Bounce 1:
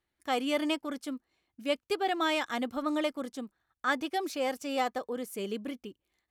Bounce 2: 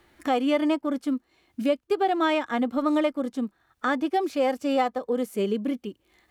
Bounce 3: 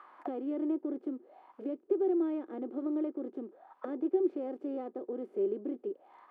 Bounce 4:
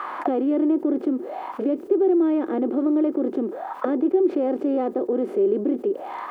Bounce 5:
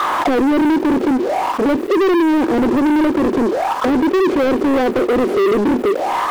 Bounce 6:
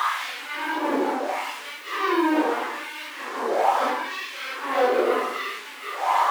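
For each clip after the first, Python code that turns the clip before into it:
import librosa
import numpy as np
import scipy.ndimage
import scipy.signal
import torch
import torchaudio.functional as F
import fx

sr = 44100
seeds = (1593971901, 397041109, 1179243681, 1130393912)

y1 = fx.high_shelf(x, sr, hz=2800.0, db=-7.5)
y1 = fx.hpss(y1, sr, part='percussive', gain_db=-9)
y1 = fx.band_squash(y1, sr, depth_pct=70)
y1 = y1 * librosa.db_to_amplitude(8.0)
y2 = fx.bin_compress(y1, sr, power=0.6)
y2 = fx.auto_wah(y2, sr, base_hz=360.0, top_hz=1300.0, q=8.5, full_db=-23.0, direction='down')
y2 = fx.high_shelf(y2, sr, hz=7900.0, db=5.0)
y3 = fx.env_flatten(y2, sr, amount_pct=50)
y3 = y3 * librosa.db_to_amplitude(8.5)
y4 = fx.leveller(y3, sr, passes=5)
y4 = y4 * librosa.db_to_amplitude(-2.5)
y5 = fx.phase_scramble(y4, sr, seeds[0], window_ms=200)
y5 = fx.filter_lfo_highpass(y5, sr, shape='sine', hz=0.75, low_hz=500.0, high_hz=2600.0, q=1.1)
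y5 = fx.room_shoebox(y5, sr, seeds[1], volume_m3=140.0, walls='mixed', distance_m=0.36)
y5 = y5 * librosa.db_to_amplitude(-3.5)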